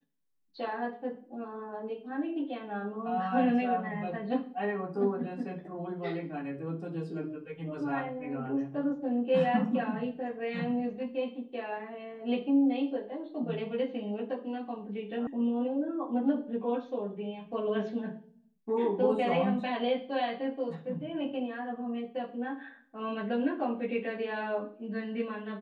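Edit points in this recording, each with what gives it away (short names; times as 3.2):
15.27 sound cut off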